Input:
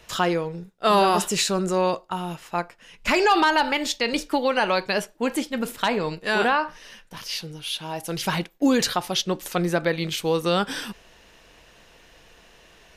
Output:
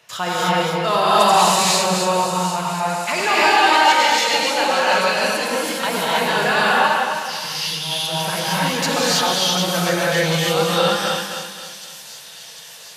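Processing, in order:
feedback delay that plays each chunk backwards 132 ms, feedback 60%, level −3.5 dB
high-pass filter 130 Hz 24 dB per octave
parametric band 290 Hz −12.5 dB 0.83 octaves
on a send: delay with a high-pass on its return 747 ms, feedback 74%, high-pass 5,400 Hz, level −9.5 dB
on the sum: reverb whose tail is shaped and stops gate 350 ms rising, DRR −7 dB
in parallel at −10 dB: soft clipping −13.5 dBFS, distortion −11 dB
on the sum: level −3.5 dB

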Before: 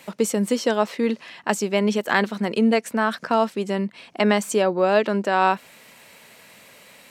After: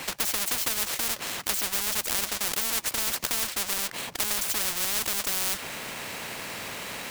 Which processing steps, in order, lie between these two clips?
each half-wave held at its own peak
every bin compressed towards the loudest bin 10 to 1
level −3.5 dB

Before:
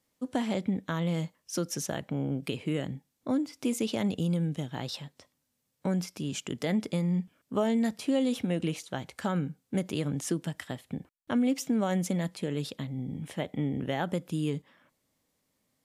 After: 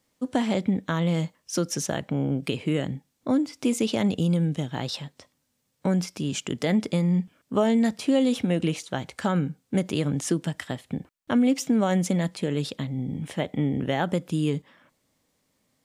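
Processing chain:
parametric band 12,000 Hz −7.5 dB 0.31 octaves
level +5.5 dB

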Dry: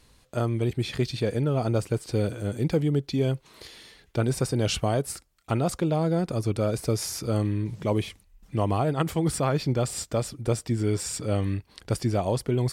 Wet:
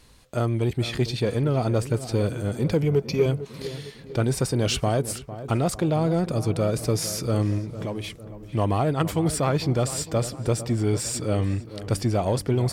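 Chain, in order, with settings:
0:02.82–0:03.26: EQ curve with evenly spaced ripples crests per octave 0.81, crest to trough 13 dB
in parallel at −5 dB: soft clipping −28.5 dBFS, distortion −8 dB
0:07.58–0:08.04: on the sum: downward compressor, threshold −28 dBFS, peak gain reduction 9 dB
feedback echo with a low-pass in the loop 453 ms, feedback 51%, low-pass 1,800 Hz, level −13 dB

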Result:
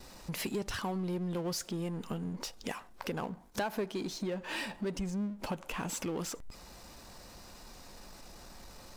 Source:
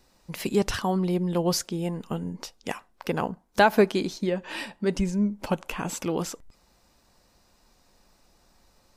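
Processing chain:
noise gate with hold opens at −56 dBFS
downward compressor 3 to 1, threshold −41 dBFS, peak gain reduction 19.5 dB
power curve on the samples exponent 0.7
level −1 dB

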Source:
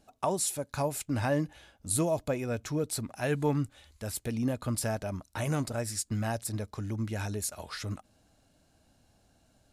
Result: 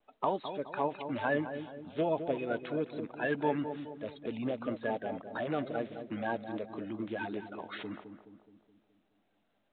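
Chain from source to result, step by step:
spectral magnitudes quantised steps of 30 dB
high-pass filter 260 Hz 12 dB per octave
downward expander −57 dBFS
on a send: feedback echo with a low-pass in the loop 211 ms, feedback 53%, low-pass 980 Hz, level −8 dB
on the sum: mu-law 64 kbit/s 8,000 Hz

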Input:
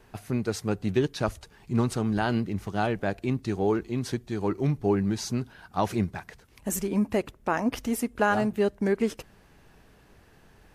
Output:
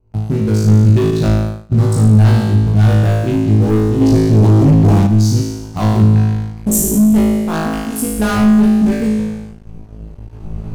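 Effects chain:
adaptive Wiener filter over 25 samples
camcorder AGC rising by 7.8 dB per second
0:07.26–0:07.99: low-shelf EQ 480 Hz −9 dB
flutter between parallel walls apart 3.2 metres, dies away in 1.2 s
leveller curve on the samples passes 3
0:01.11–0:01.72: downward expander −12 dBFS
bass and treble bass +14 dB, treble +11 dB
0:04.01–0:05.07: leveller curve on the samples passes 2
level −8.5 dB

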